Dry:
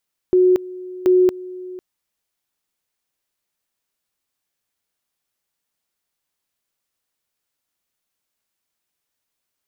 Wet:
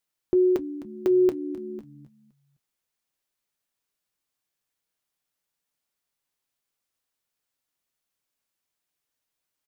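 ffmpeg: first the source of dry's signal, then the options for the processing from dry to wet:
-f lavfi -i "aevalsrc='pow(10,(-10-19.5*gte(mod(t,0.73),0.23))/20)*sin(2*PI*366*t)':d=1.46:s=44100"
-filter_complex "[0:a]flanger=delay=6.3:depth=1.6:regen=-59:speed=0.21:shape=triangular,asplit=4[a][b][c][d];[b]adelay=258,afreqshift=-75,volume=-15dB[e];[c]adelay=516,afreqshift=-150,volume=-23.6dB[f];[d]adelay=774,afreqshift=-225,volume=-32.3dB[g];[a][e][f][g]amix=inputs=4:normalize=0"

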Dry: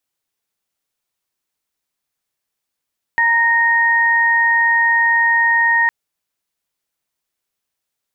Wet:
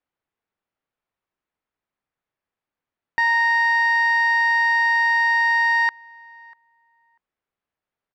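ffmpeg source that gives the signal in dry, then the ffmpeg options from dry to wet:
-f lavfi -i "aevalsrc='0.126*sin(2*PI*929*t)+0.251*sin(2*PI*1858*t)':d=2.71:s=44100"
-filter_complex "[0:a]lowpass=1.9k,asoftclip=type=tanh:threshold=-12.5dB,asplit=2[a][b];[b]adelay=643,lowpass=f=1.4k:p=1,volume=-22.5dB,asplit=2[c][d];[d]adelay=643,lowpass=f=1.4k:p=1,volume=0.17[e];[a][c][e]amix=inputs=3:normalize=0"

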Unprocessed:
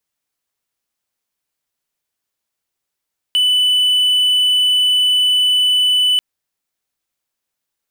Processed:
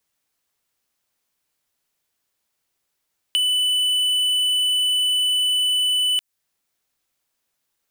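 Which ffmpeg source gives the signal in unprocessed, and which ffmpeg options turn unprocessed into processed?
-f lavfi -i "aevalsrc='0.355*(1-4*abs(mod(2990*t+0.25,1)-0.5))':d=2.84:s=44100"
-filter_complex "[0:a]acrossover=split=1400|5600[a][b][c];[a]acompressor=threshold=-55dB:ratio=4[d];[b]acompressor=threshold=-26dB:ratio=4[e];[c]acompressor=threshold=-33dB:ratio=4[f];[d][e][f]amix=inputs=3:normalize=0,asplit=2[g][h];[h]asoftclip=type=tanh:threshold=-21dB,volume=-5dB[i];[g][i]amix=inputs=2:normalize=0"

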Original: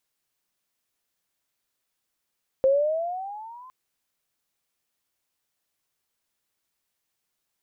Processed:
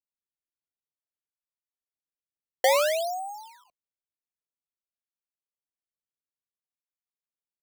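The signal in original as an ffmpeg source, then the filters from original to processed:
-f lavfi -i "aevalsrc='pow(10,(-15-28*t/1.06)/20)*sin(2*PI*524*1.06/(12*log(2)/12)*(exp(12*log(2)/12*t/1.06)-1))':d=1.06:s=44100"
-af "acrusher=samples=26:mix=1:aa=0.000001:lfo=1:lforange=41.6:lforate=0.54,agate=range=-33dB:threshold=-34dB:ratio=3:detection=peak"

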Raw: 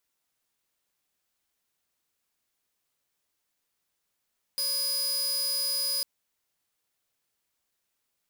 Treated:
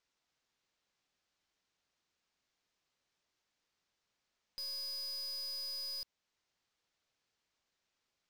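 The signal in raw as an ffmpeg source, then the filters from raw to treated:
-f lavfi -i "aevalsrc='0.0631*(2*mod(4960*t,1)-1)':d=1.45:s=44100"
-af "lowpass=f=6.3k:w=0.5412,lowpass=f=6.3k:w=1.3066,alimiter=level_in=6.5dB:limit=-24dB:level=0:latency=1:release=329,volume=-6.5dB,aeval=exprs='(tanh(100*val(0)+0.25)-tanh(0.25))/100':c=same"

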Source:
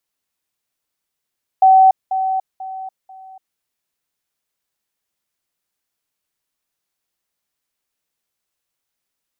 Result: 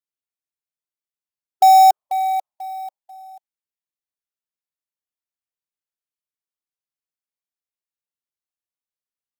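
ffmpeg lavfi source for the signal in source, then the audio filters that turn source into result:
-f lavfi -i "aevalsrc='pow(10,(-6-10*floor(t/0.49))/20)*sin(2*PI*761*t)*clip(min(mod(t,0.49),0.29-mod(t,0.49))/0.005,0,1)':d=1.96:s=44100"
-af "afftdn=nr=18:nf=-41,acrusher=bits=4:mode=log:mix=0:aa=0.000001"

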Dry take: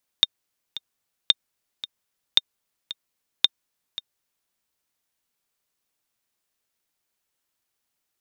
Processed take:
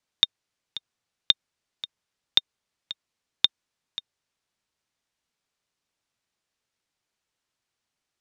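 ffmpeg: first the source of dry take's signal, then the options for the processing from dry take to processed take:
-f lavfi -i "aevalsrc='pow(10,(-2-16*gte(mod(t,2*60/112),60/112))/20)*sin(2*PI*3650*mod(t,60/112))*exp(-6.91*mod(t,60/112)/0.03)':d=4.28:s=44100"
-filter_complex "[0:a]lowpass=6.8k,lowshelf=f=65:g=-8.5,acrossover=split=150[a][b];[a]acontrast=49[c];[c][b]amix=inputs=2:normalize=0"

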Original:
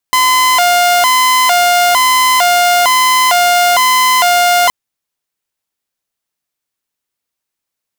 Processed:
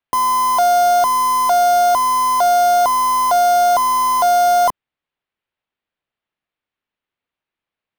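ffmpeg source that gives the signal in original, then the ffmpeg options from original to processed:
-f lavfi -i "aevalsrc='0.562*(2*mod((863.5*t+156.5/1.1*(0.5-abs(mod(1.1*t,1)-0.5))),1)-1)':d=4.57:s=44100"
-filter_complex "[0:a]lowpass=f=3.3k:w=0.5412,lowpass=f=3.3k:w=1.3066,acrossover=split=260|1200[a][b][c];[c]aeval=exprs='(mod(15.8*val(0)+1,2)-1)/15.8':c=same[d];[a][b][d]amix=inputs=3:normalize=0"

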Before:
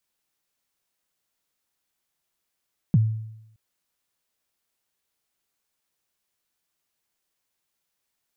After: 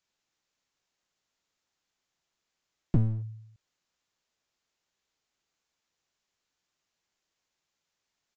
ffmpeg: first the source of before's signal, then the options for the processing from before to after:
-f lavfi -i "aevalsrc='0.251*pow(10,-3*t/0.84)*sin(2*PI*(200*0.032/log(110/200)*(exp(log(110/200)*min(t,0.032)/0.032)-1)+110*max(t-0.032,0)))':d=0.62:s=44100"
-af "aresample=16000,aeval=exprs='clip(val(0),-1,0.0224)':c=same,aresample=44100"

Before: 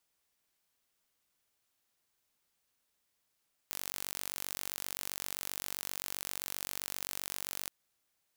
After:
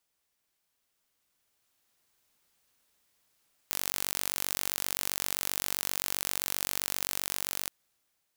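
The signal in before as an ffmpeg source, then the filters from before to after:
-f lavfi -i "aevalsrc='0.282*eq(mod(n,926),0)':d=3.97:s=44100"
-af "dynaudnorm=f=680:g=5:m=8dB"

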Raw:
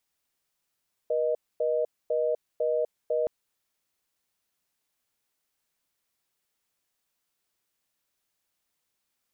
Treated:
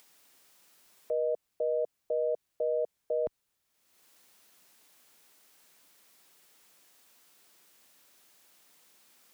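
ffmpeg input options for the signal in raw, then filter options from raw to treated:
-f lavfi -i "aevalsrc='0.0501*(sin(2*PI*480*t)+sin(2*PI*620*t))*clip(min(mod(t,0.5),0.25-mod(t,0.5))/0.005,0,1)':d=2.17:s=44100"
-filter_complex "[0:a]equalizer=f=61:w=0.32:g=4.5,acrossover=split=180[a][b];[b]acompressor=mode=upward:threshold=-47dB:ratio=2.5[c];[a][c]amix=inputs=2:normalize=0,alimiter=limit=-23dB:level=0:latency=1:release=93"

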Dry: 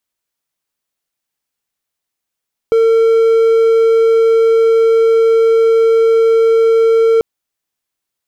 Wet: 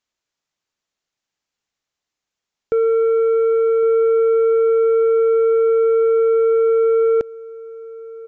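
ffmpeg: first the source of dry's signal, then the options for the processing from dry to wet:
-f lavfi -i "aevalsrc='0.562*(1-4*abs(mod(453*t+0.25,1)-0.5))':d=4.49:s=44100"
-filter_complex "[0:a]aresample=16000,asoftclip=type=tanh:threshold=-13.5dB,aresample=44100,asplit=2[a][b];[b]adelay=1108,volume=-18dB,highshelf=f=4k:g=-24.9[c];[a][c]amix=inputs=2:normalize=0"

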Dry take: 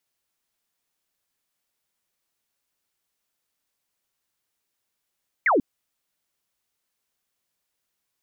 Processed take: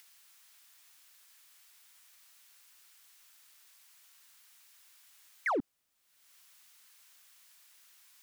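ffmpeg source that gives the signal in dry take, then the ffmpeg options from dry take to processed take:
-f lavfi -i "aevalsrc='0.158*clip(t/0.002,0,1)*clip((0.14-t)/0.002,0,1)*sin(2*PI*2300*0.14/log(230/2300)*(exp(log(230/2300)*t/0.14)-1))':d=0.14:s=44100"
-filter_complex "[0:a]acrossover=split=220|990[a][b][c];[c]acompressor=mode=upward:threshold=-45dB:ratio=2.5[d];[a][b][d]amix=inputs=3:normalize=0,alimiter=level_in=2dB:limit=-24dB:level=0:latency=1:release=16,volume=-2dB,asoftclip=type=hard:threshold=-27dB"

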